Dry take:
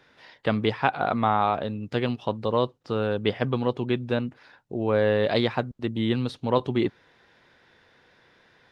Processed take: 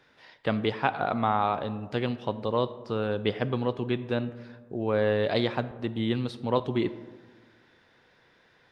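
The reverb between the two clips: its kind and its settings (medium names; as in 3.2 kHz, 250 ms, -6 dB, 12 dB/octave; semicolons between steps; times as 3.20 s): algorithmic reverb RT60 1.6 s, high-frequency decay 0.35×, pre-delay 5 ms, DRR 14 dB; trim -3 dB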